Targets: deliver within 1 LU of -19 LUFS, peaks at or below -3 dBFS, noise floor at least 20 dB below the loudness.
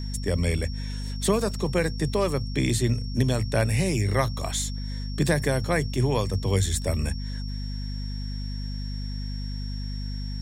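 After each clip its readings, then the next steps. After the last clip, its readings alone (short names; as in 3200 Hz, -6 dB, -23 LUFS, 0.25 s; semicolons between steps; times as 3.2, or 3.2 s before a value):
hum 50 Hz; harmonics up to 250 Hz; hum level -29 dBFS; steady tone 5500 Hz; tone level -42 dBFS; loudness -27.0 LUFS; peak -9.0 dBFS; loudness target -19.0 LUFS
-> de-hum 50 Hz, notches 5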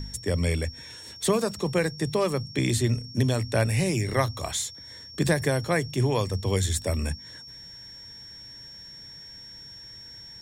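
hum none; steady tone 5500 Hz; tone level -42 dBFS
-> notch 5500 Hz, Q 30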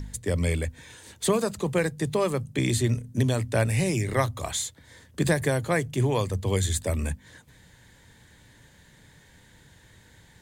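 steady tone none; loudness -26.5 LUFS; peak -9.0 dBFS; loudness target -19.0 LUFS
-> gain +7.5 dB; limiter -3 dBFS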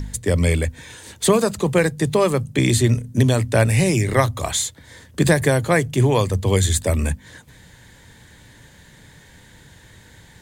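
loudness -19.0 LUFS; peak -3.0 dBFS; noise floor -48 dBFS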